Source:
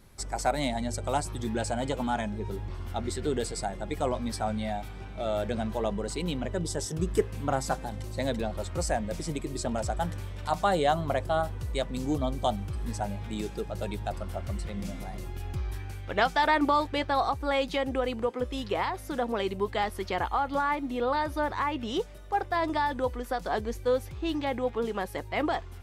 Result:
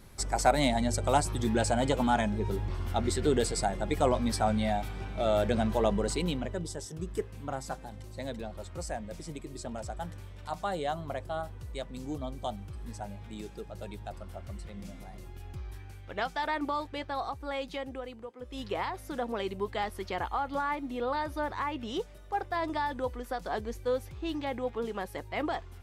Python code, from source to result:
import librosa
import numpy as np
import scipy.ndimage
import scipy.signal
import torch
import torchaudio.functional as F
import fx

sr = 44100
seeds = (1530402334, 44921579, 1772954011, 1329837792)

y = fx.gain(x, sr, db=fx.line((6.09, 3.0), (6.83, -8.0), (17.79, -8.0), (18.36, -16.0), (18.61, -4.0)))